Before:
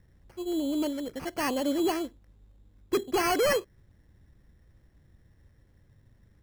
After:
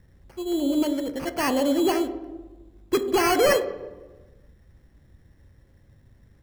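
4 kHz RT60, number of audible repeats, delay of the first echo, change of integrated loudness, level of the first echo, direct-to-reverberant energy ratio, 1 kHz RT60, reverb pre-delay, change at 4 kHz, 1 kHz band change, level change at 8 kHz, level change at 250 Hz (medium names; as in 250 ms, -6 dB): 0.80 s, no echo, no echo, +5.5 dB, no echo, 9.0 dB, 1.1 s, 3 ms, +4.5 dB, +5.0 dB, +4.5 dB, +5.5 dB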